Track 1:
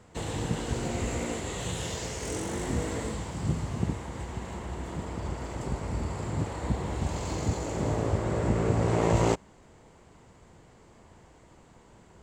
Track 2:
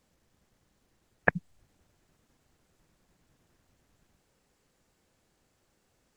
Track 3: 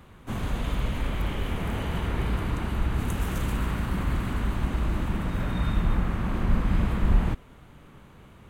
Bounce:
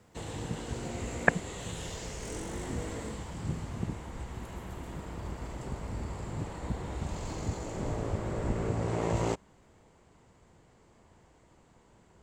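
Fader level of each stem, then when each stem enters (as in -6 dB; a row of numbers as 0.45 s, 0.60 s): -6.0 dB, +1.0 dB, -19.0 dB; 0.00 s, 0.00 s, 1.35 s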